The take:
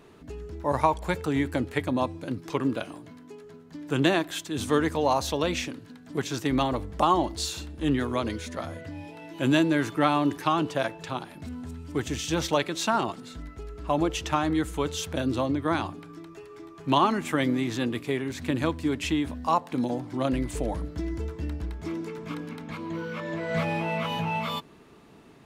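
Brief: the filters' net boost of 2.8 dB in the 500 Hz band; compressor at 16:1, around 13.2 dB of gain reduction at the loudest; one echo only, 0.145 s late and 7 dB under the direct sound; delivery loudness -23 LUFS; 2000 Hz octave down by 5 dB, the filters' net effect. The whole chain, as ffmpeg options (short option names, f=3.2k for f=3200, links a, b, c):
-af "equalizer=f=500:t=o:g=4,equalizer=f=2k:t=o:g=-7,acompressor=threshold=-29dB:ratio=16,aecho=1:1:145:0.447,volume=11.5dB"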